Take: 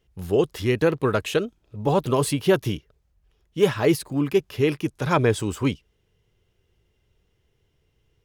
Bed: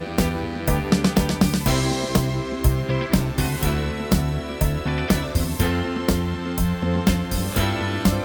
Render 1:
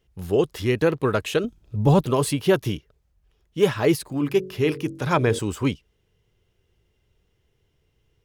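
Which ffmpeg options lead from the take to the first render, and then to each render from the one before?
-filter_complex "[0:a]asettb=1/sr,asplit=3[s0][s1][s2];[s0]atrim=end=1.444[s3];[s1]atrim=start=1.44:end=2.01,asetpts=PTS-STARTPTS,afade=t=in:d=0.004:c=qsin,afade=t=out:st=0.566:d=0.004:c=qsin,bass=f=250:g=10,treble=f=4000:g=4[s4];[s2]atrim=start=2.006[s5];[s3][s4]acrossfade=d=0.004:c1=hsin:c2=qsin[s6];[s6][s5]acrossfade=d=0.004:c1=qsin:c2=hsin,asettb=1/sr,asplit=3[s7][s8][s9];[s7]atrim=end=4.094[s10];[s8]atrim=start=4.09:end=5.39,asetpts=PTS-STARTPTS,afade=t=in:d=0.004:c=qsin,afade=t=out:st=1.296:d=0.004:c=qsin,bandreject=f=46.59:t=h:w=4,bandreject=f=93.18:t=h:w=4,bandreject=f=139.77:t=h:w=4,bandreject=f=186.36:t=h:w=4,bandreject=f=232.95:t=h:w=4,bandreject=f=279.54:t=h:w=4,bandreject=f=326.13:t=h:w=4,bandreject=f=372.72:t=h:w=4,bandreject=f=419.31:t=h:w=4,bandreject=f=465.9:t=h:w=4,bandreject=f=512.49:t=h:w=4,bandreject=f=559.08:t=h:w=4[s11];[s9]atrim=start=5.386[s12];[s10][s11]acrossfade=d=0.004:c1=hsin:c2=qsin[s13];[s13][s12]acrossfade=d=0.004:c1=qsin:c2=hsin"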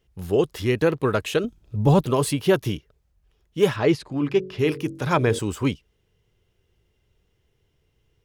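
-filter_complex "[0:a]asettb=1/sr,asplit=3[s0][s1][s2];[s0]atrim=end=3.764[s3];[s1]atrim=start=3.76:end=4.59,asetpts=PTS-STARTPTS,afade=t=in:d=0.004:c=qsin,afade=t=out:st=0.826:d=0.004:c=qsin,lowpass=5000[s4];[s2]atrim=start=4.586[s5];[s3][s4]acrossfade=d=0.004:c1=hsin:c2=qsin[s6];[s6][s5]acrossfade=d=0.004:c1=qsin:c2=hsin"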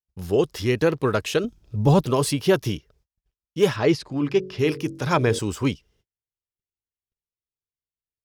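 -af "agate=range=0.0141:threshold=0.00112:ratio=16:detection=peak,equalizer=f=5300:t=o:w=0.54:g=6.5"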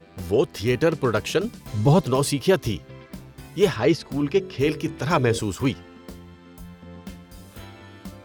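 -filter_complex "[1:a]volume=0.1[s0];[0:a][s0]amix=inputs=2:normalize=0"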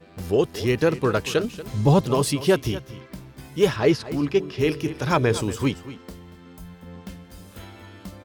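-af "aecho=1:1:234:0.178"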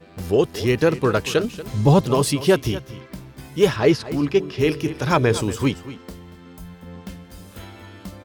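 -af "volume=1.33"

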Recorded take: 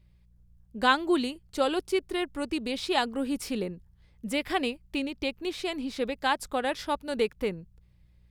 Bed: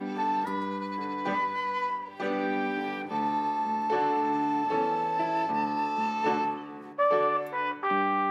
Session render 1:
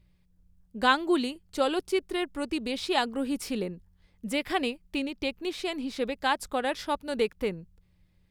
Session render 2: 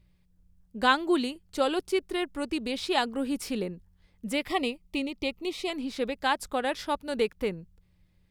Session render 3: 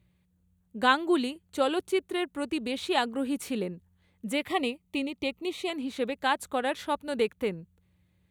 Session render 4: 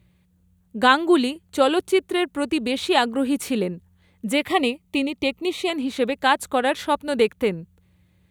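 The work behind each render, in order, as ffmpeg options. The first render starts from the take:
-af "bandreject=f=60:t=h:w=4,bandreject=f=120:t=h:w=4"
-filter_complex "[0:a]asettb=1/sr,asplit=3[s0][s1][s2];[s0]atrim=end=4.484[s3];[s1]atrim=start=4.48:end=5.7,asetpts=PTS-STARTPTS,afade=t=in:d=0.004:c=qsin,afade=t=out:st=1.216:d=0.004:c=qsin,asuperstop=centerf=1600:order=20:qfactor=3.5[s4];[s2]atrim=start=5.696[s5];[s3][s4]acrossfade=d=0.004:c1=hsin:c2=qsin[s6];[s6][s5]acrossfade=d=0.004:c1=qsin:c2=hsin"
-af "highpass=f=65:w=0.5412,highpass=f=65:w=1.3066,equalizer=f=5100:t=o:w=0.25:g=-13"
-af "volume=2.51,alimiter=limit=0.708:level=0:latency=1"

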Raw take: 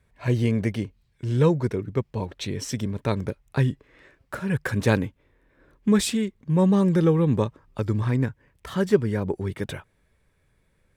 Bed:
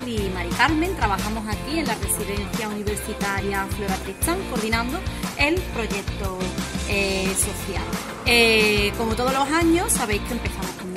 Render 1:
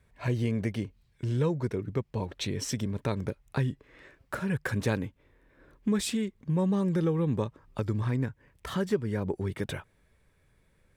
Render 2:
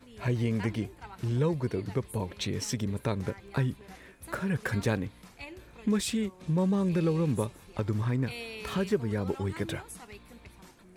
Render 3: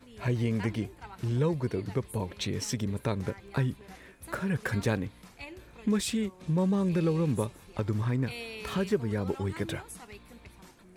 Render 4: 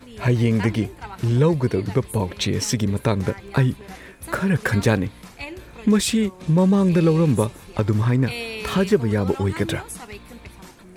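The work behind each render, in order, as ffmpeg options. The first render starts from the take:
-af "acompressor=threshold=0.0316:ratio=2"
-filter_complex "[1:a]volume=0.0596[s0];[0:a][s0]amix=inputs=2:normalize=0"
-af anull
-af "volume=3.16"

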